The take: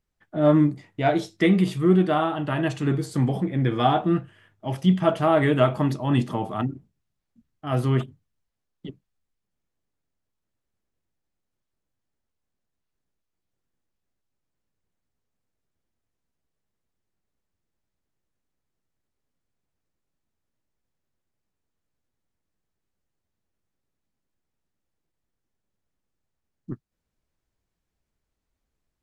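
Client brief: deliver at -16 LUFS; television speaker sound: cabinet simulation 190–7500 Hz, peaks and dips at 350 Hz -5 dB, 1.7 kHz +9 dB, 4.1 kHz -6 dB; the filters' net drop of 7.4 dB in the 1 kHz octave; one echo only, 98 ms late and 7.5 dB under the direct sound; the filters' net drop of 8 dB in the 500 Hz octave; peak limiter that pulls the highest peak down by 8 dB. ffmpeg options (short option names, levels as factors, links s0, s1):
-af "equalizer=f=500:t=o:g=-6.5,equalizer=f=1000:t=o:g=-9,alimiter=limit=0.133:level=0:latency=1,highpass=f=190:w=0.5412,highpass=f=190:w=1.3066,equalizer=f=350:t=q:w=4:g=-5,equalizer=f=1700:t=q:w=4:g=9,equalizer=f=4100:t=q:w=4:g=-6,lowpass=f=7500:w=0.5412,lowpass=f=7500:w=1.3066,aecho=1:1:98:0.422,volume=5.31"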